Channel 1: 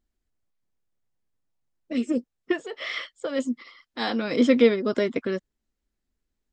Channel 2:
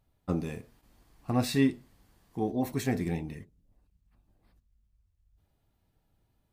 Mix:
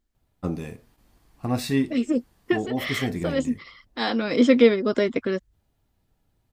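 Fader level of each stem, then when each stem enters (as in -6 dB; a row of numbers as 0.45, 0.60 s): +2.0, +2.0 dB; 0.00, 0.15 s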